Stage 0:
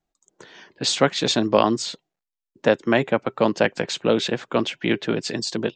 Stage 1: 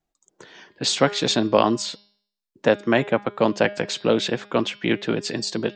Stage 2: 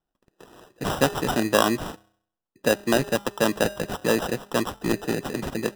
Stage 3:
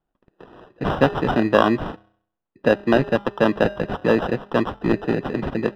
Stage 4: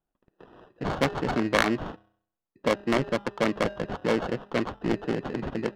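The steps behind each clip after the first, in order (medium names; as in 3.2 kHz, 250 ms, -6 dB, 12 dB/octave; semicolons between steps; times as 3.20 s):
de-hum 204.4 Hz, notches 27
sample-and-hold 20×; trim -2.5 dB
distance through air 360 m; trim +5.5 dB
self-modulated delay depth 0.42 ms; trim -6.5 dB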